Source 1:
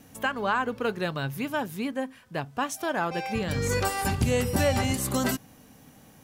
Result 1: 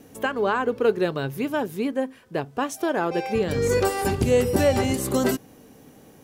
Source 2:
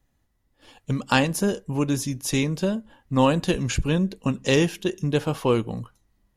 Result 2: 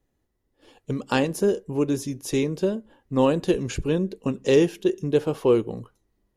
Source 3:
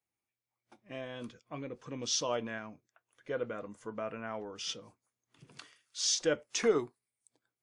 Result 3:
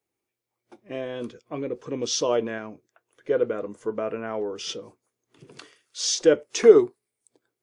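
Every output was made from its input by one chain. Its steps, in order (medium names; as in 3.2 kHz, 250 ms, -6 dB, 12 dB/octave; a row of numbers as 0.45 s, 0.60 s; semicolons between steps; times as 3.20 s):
peaking EQ 400 Hz +11.5 dB 0.95 oct; normalise loudness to -24 LUFS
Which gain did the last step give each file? 0.0 dB, -5.5 dB, +5.0 dB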